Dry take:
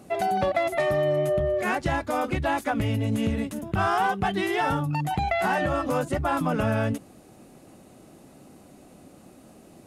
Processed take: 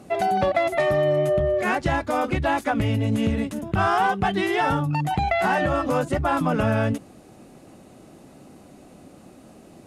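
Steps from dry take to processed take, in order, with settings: high shelf 12000 Hz -10.5 dB; gain +3 dB

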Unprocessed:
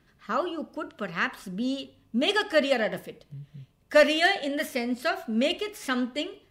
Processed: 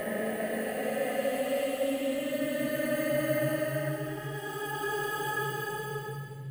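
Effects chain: reverse delay 0.59 s, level -7 dB; high shelf 2900 Hz -10 dB; sample-and-hold 4×; Paulstretch 11×, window 0.25 s, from 3.04; on a send: reverb RT60 0.80 s, pre-delay 7 ms, DRR 6.5 dB

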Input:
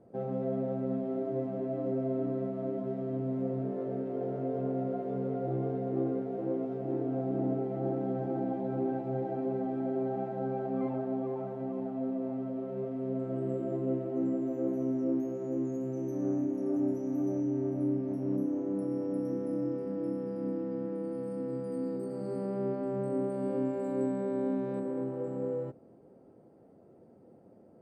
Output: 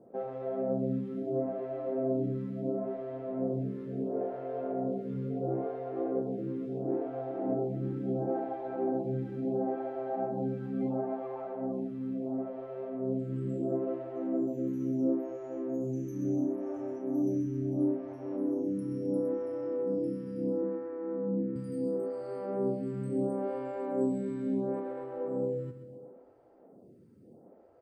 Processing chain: 20.62–21.56 speaker cabinet 190–2100 Hz, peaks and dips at 190 Hz +9 dB, 360 Hz +6 dB, 570 Hz -8 dB; feedback echo 0.131 s, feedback 54%, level -10 dB; photocell phaser 0.73 Hz; gain +3 dB

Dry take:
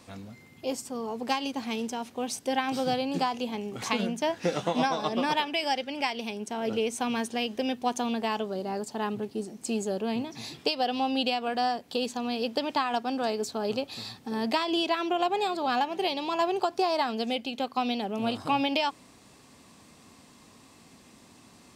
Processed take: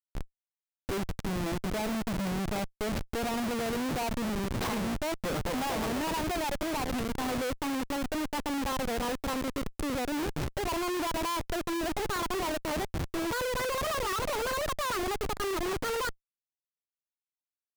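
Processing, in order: speed glide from 69% -> 176%; treble ducked by the level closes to 2100 Hz, closed at -26.5 dBFS; Schmitt trigger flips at -35 dBFS

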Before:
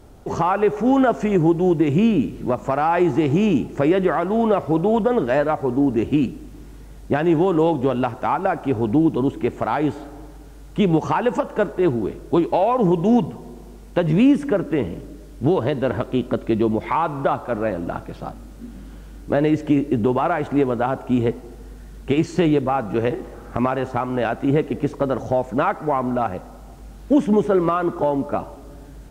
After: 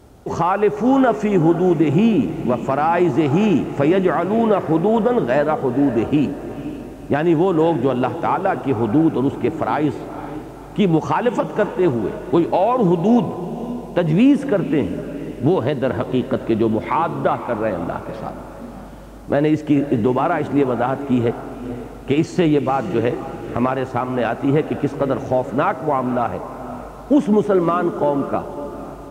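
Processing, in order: HPF 55 Hz; on a send: diffused feedback echo 0.514 s, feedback 45%, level -12 dB; on the sum: gain +1.5 dB

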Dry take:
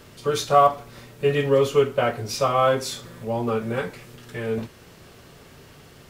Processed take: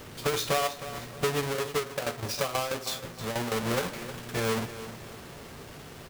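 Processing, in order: half-waves squared off; low shelf 400 Hz -4.5 dB; compressor 12:1, threshold -25 dBFS, peak gain reduction 16.5 dB; 1.42–3.56 tremolo saw down 6.2 Hz, depth 70%; feedback echo 0.313 s, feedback 36%, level -13 dB

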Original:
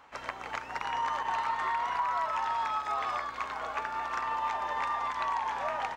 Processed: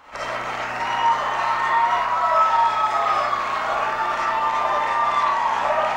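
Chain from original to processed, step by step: limiter -26 dBFS, peak gain reduction 6.5 dB; reverb RT60 0.60 s, pre-delay 15 ms, DRR -7 dB; gain +6.5 dB

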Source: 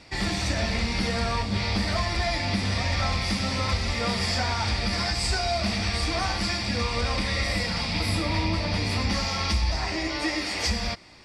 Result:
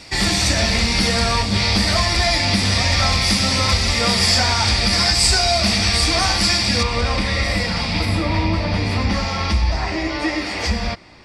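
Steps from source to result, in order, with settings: high shelf 4100 Hz +10 dB, from 6.83 s -3 dB, from 8.05 s -9.5 dB; gain +7 dB

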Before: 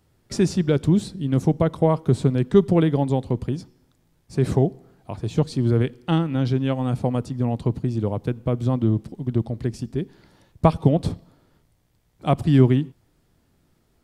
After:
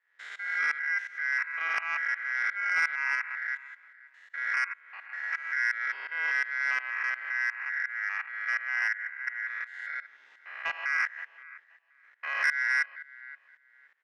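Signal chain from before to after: stepped spectrum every 0.2 s; 9.47–10.84 tilt shelf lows -4 dB, about 1200 Hz; in parallel at -2 dB: compressor, threshold -31 dBFS, peak gain reduction 16 dB; on the sum: ring modulator 1800 Hz; BPF 580–3000 Hz; tremolo saw up 2.8 Hz, depth 90%; feedback echo 0.524 s, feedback 19%, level -21.5 dB; soft clip -18 dBFS, distortion -16 dB

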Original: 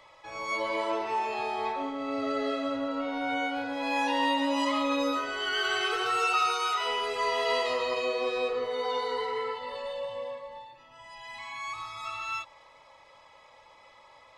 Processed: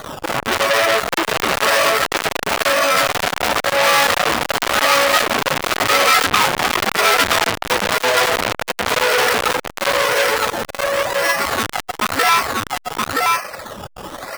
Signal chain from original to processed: minimum comb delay 1.6 ms; HPF 190 Hz 12 dB/oct; reverb removal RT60 1.9 s; steep low-pass 2800 Hz 48 dB/oct; tilt shelf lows -3 dB, about 670 Hz; compressor 2.5:1, threshold -39 dBFS, peak gain reduction 11 dB; decimation with a swept rate 17×, swing 60% 0.95 Hz; echo 0.973 s -3 dB; maximiser +30 dB; core saturation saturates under 2700 Hz

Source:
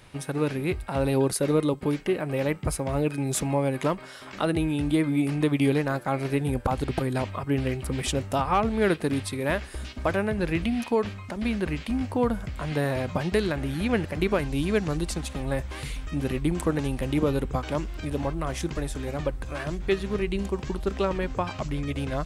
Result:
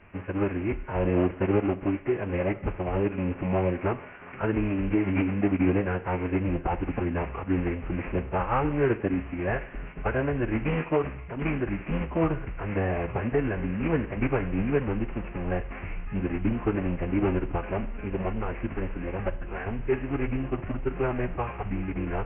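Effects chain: CVSD 16 kbps; formant-preserving pitch shift -7 st; Schroeder reverb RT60 0.67 s, combs from 33 ms, DRR 15 dB

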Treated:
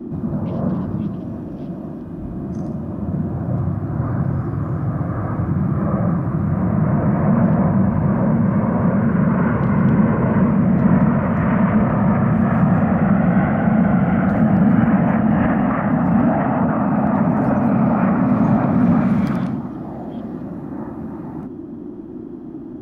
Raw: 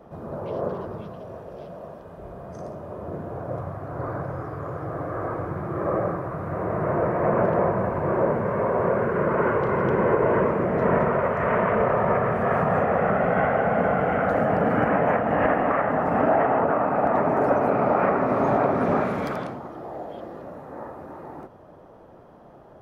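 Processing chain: resonant low shelf 290 Hz +9.5 dB, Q 3; in parallel at +0.5 dB: limiter -13 dBFS, peak gain reduction 11 dB; on the sum: band noise 220–360 Hz -28 dBFS; gain -4.5 dB

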